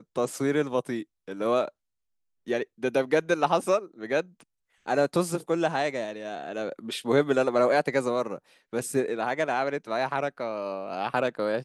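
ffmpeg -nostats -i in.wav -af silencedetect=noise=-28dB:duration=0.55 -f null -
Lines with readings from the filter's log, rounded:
silence_start: 1.68
silence_end: 2.49 | silence_duration: 0.81
silence_start: 4.21
silence_end: 4.88 | silence_duration: 0.67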